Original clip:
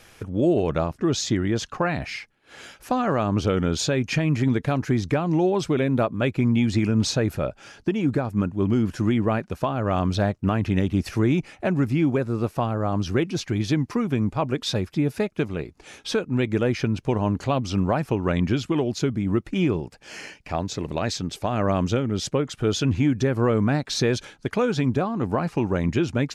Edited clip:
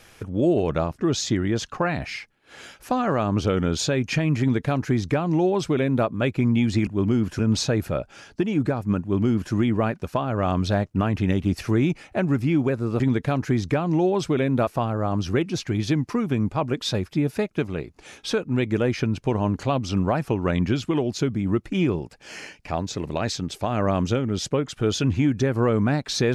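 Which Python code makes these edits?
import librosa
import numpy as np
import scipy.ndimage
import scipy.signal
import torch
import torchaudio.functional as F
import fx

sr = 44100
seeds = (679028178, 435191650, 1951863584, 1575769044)

y = fx.edit(x, sr, fx.duplicate(start_s=4.4, length_s=1.67, to_s=12.48),
    fx.duplicate(start_s=8.49, length_s=0.52, to_s=6.87), tone=tone)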